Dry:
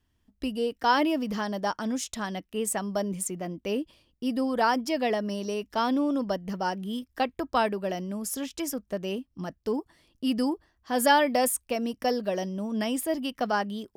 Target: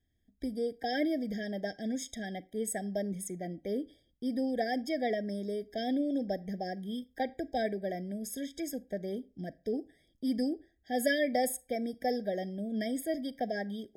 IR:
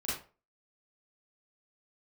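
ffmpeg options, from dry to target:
-filter_complex "[0:a]asplit=2[a][b];[1:a]atrim=start_sample=2205[c];[b][c]afir=irnorm=-1:irlink=0,volume=-23dB[d];[a][d]amix=inputs=2:normalize=0,afftfilt=real='re*eq(mod(floor(b*sr/1024/780),2),0)':imag='im*eq(mod(floor(b*sr/1024/780),2),0)':win_size=1024:overlap=0.75,volume=-5dB"

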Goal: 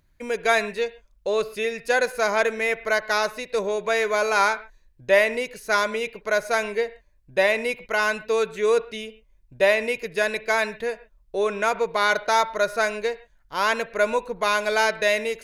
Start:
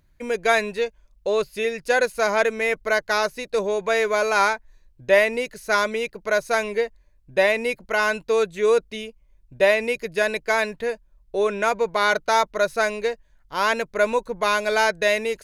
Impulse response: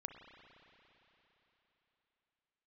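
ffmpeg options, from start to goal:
-filter_complex "[0:a]asplit=2[a][b];[1:a]atrim=start_sample=2205,atrim=end_sample=6615,lowshelf=f=430:g=-7[c];[b][c]afir=irnorm=-1:irlink=0,volume=3dB[d];[a][d]amix=inputs=2:normalize=0,volume=-5.5dB"

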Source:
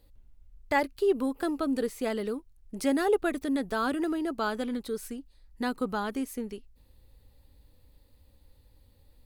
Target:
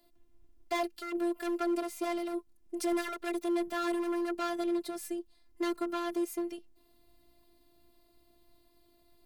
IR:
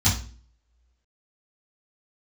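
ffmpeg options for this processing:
-af "volume=29.5dB,asoftclip=hard,volume=-29.5dB,afreqshift=98,afftfilt=real='hypot(re,im)*cos(PI*b)':imag='0':win_size=512:overlap=0.75,volume=3dB"

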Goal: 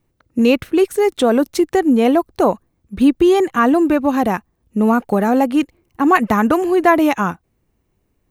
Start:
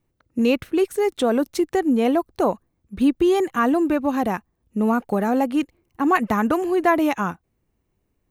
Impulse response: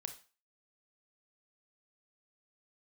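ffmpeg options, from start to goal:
-filter_complex "[0:a]asettb=1/sr,asplit=3[a][b][c];[a]atrim=end=3.334[d];[b]atrim=start=3.33:end=3.74,asetpts=PTS-STARTPTS,afade=t=in:d=0.004:c=qsin,afade=t=out:st=0.406:d=0.004:c=qsin,highshelf=f=9.5k:g=-5[e];[c]atrim=start=3.736[f];[d][e]acrossfade=d=0.004:c1=hsin:c2=qsin[g];[g][f]acrossfade=d=0.004:c1=qsin:c2=hsin,volume=5.5dB"

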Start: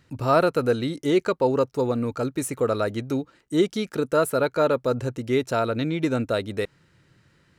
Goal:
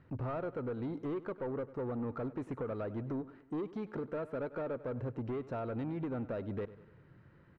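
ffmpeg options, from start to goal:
-filter_complex "[0:a]acompressor=threshold=-30dB:ratio=6,asoftclip=type=tanh:threshold=-33dB,lowpass=1.4k,asplit=2[a][b];[b]aecho=0:1:98|196|294|392:0.141|0.072|0.0367|0.0187[c];[a][c]amix=inputs=2:normalize=0"

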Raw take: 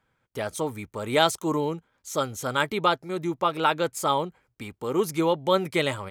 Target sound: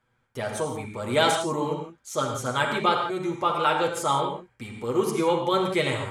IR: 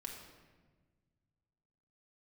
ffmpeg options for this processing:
-filter_complex "[1:a]atrim=start_sample=2205,afade=t=out:st=0.14:d=0.01,atrim=end_sample=6615,asetrate=22491,aresample=44100[a];[0:a][a]afir=irnorm=-1:irlink=0"

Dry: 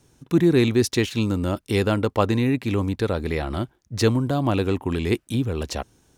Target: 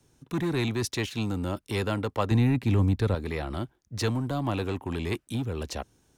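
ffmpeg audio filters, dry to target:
-filter_complex "[0:a]acrossover=split=170|570|2100[a][b][c][d];[b]asoftclip=type=hard:threshold=-25.5dB[e];[a][e][c][d]amix=inputs=4:normalize=0,asettb=1/sr,asplit=3[f][g][h];[f]atrim=end=2.314[i];[g]atrim=start=2.31:end=3.15,asetpts=PTS-STARTPTS,afade=t=in:d=0.004:c=qsin,afade=t=out:st=0.836:d=0.004:c=qsin,lowshelf=f=220:g=11.5[j];[h]atrim=start=3.146[k];[i][j]acrossfade=d=0.004:c1=hsin:c2=qsin[l];[l][k]acrossfade=d=0.004:c1=qsin:c2=hsin,volume=-5.5dB"

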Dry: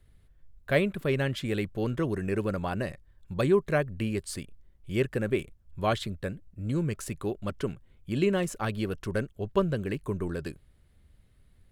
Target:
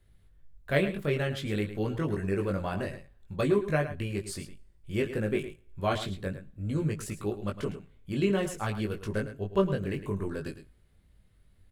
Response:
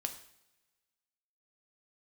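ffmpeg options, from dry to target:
-filter_complex "[0:a]flanger=delay=19:depth=2:speed=0.56,aecho=1:1:108:0.251,asplit=2[a][b];[1:a]atrim=start_sample=2205[c];[b][c]afir=irnorm=-1:irlink=0,volume=-13.5dB[d];[a][d]amix=inputs=2:normalize=0"

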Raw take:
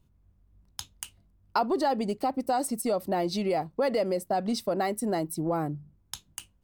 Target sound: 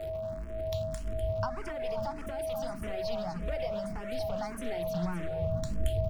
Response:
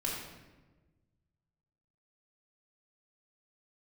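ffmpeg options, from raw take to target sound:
-filter_complex "[0:a]aeval=exprs='val(0)+0.5*0.0119*sgn(val(0))':c=same,highshelf=f=4.6k:g=-10.5,bandreject=f=50:t=h:w=6,bandreject=f=100:t=h:w=6,bandreject=f=150:t=h:w=6,bandreject=f=200:t=h:w=6,bandreject=f=250:t=h:w=6,asubboost=boost=8.5:cutoff=200,acrossover=split=120|470|3400[a][b][c][d];[b]aeval=exprs='0.0133*(abs(mod(val(0)/0.0133+3,4)-2)-1)':c=same[e];[a][e][c][d]amix=inputs=4:normalize=0,acrossover=split=160[f][g];[g]acompressor=threshold=-47dB:ratio=2[h];[f][h]amix=inputs=2:normalize=0,aeval=exprs='val(0)+0.0141*sin(2*PI*590*n/s)':c=same,aecho=1:1:271:0.299,asetrate=48000,aresample=44100,asplit=2[i][j];[j]afreqshift=1.7[k];[i][k]amix=inputs=2:normalize=1,volume=4dB"

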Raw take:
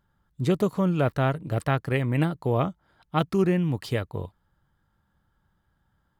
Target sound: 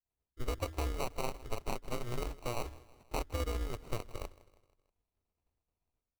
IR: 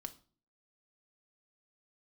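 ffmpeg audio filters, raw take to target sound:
-filter_complex "[0:a]agate=range=-33dB:threshold=-59dB:ratio=3:detection=peak,equalizer=f=4.2k:t=o:w=2.7:g=-4.5,acrossover=split=4100[a][b];[a]dynaudnorm=f=310:g=3:m=6.5dB[c];[c][b]amix=inputs=2:normalize=0,highpass=f=78:p=1,bandreject=f=50:t=h:w=6,bandreject=f=100:t=h:w=6,bandreject=f=150:t=h:w=6,bandreject=f=200:t=h:w=6,aeval=exprs='val(0)*sin(2*PI*120*n/s)':c=same,asplit=3[d][e][f];[e]asetrate=35002,aresample=44100,atempo=1.25992,volume=-16dB[g];[f]asetrate=55563,aresample=44100,atempo=0.793701,volume=-15dB[h];[d][g][h]amix=inputs=3:normalize=0,aeval=exprs='0.447*(cos(1*acos(clip(val(0)/0.447,-1,1)))-cos(1*PI/2))+0.0158*(cos(6*acos(clip(val(0)/0.447,-1,1)))-cos(6*PI/2))+0.0316*(cos(7*acos(clip(val(0)/0.447,-1,1)))-cos(7*PI/2))':c=same,acompressor=threshold=-37dB:ratio=4,firequalizer=gain_entry='entry(120,0);entry(190,-20);entry(410,-5)':delay=0.05:min_phase=1,acrusher=samples=26:mix=1:aa=0.000001,asplit=2[i][j];[j]aecho=0:1:160|320|480|640:0.1|0.05|0.025|0.0125[k];[i][k]amix=inputs=2:normalize=0,volume=7dB"

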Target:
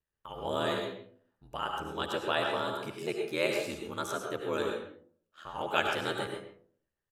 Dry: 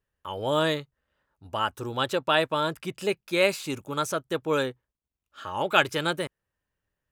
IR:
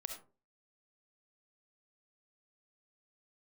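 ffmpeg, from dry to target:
-filter_complex "[0:a]aeval=exprs='val(0)*sin(2*PI*40*n/s)':c=same,asplit=2[a][b];[b]adelay=130,highpass=300,lowpass=3.4k,asoftclip=type=hard:threshold=-14dB,volume=-10dB[c];[a][c]amix=inputs=2:normalize=0[d];[1:a]atrim=start_sample=2205,asetrate=27783,aresample=44100[e];[d][e]afir=irnorm=-1:irlink=0,volume=-4.5dB"

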